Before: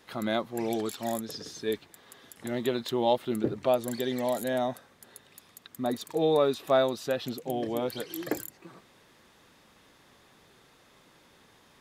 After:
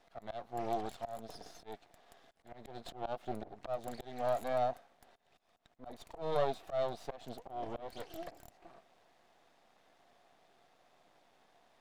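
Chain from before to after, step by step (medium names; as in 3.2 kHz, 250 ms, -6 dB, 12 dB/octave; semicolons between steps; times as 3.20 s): high-pass 200 Hz 6 dB/octave; half-wave rectifier; treble shelf 7.3 kHz -9.5 dB; slow attack 205 ms; peaking EQ 700 Hz +14.5 dB 0.43 oct; trim -6 dB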